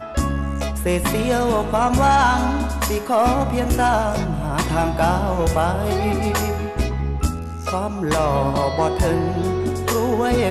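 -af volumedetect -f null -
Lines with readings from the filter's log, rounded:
mean_volume: -19.4 dB
max_volume: -7.4 dB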